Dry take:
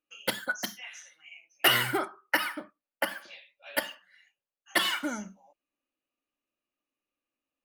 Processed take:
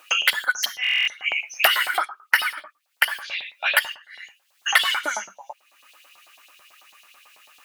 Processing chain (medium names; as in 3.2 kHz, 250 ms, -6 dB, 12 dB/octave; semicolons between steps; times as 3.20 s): LFO high-pass saw up 9.1 Hz 700–4200 Hz; buffer glitch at 0.82 s, samples 1024, times 10; three bands compressed up and down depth 100%; trim +7 dB